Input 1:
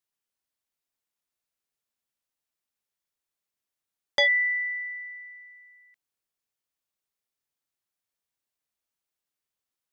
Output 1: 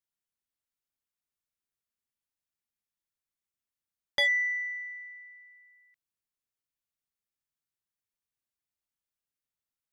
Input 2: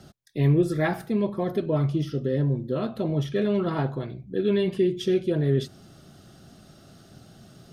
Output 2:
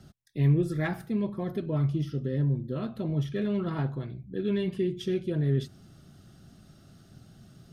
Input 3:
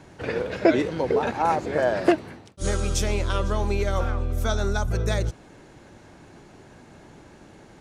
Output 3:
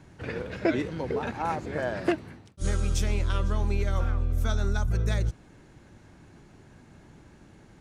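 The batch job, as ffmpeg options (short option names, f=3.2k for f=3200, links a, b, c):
-filter_complex "[0:a]equalizer=f=590:w=0.53:g=-9,asplit=2[a][b];[b]adynamicsmooth=sensitivity=1.5:basefreq=2.5k,volume=-0.5dB[c];[a][c]amix=inputs=2:normalize=0,volume=-5.5dB"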